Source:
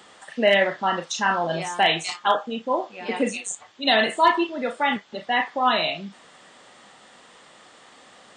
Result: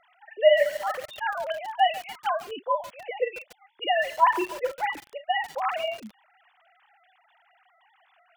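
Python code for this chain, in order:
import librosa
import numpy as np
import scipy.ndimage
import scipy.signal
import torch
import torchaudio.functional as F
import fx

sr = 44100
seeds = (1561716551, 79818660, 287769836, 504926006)

y = fx.sine_speech(x, sr)
y = fx.echo_crushed(y, sr, ms=142, feedback_pct=80, bits=4, wet_db=-14.5)
y = F.gain(torch.from_numpy(y), -3.5).numpy()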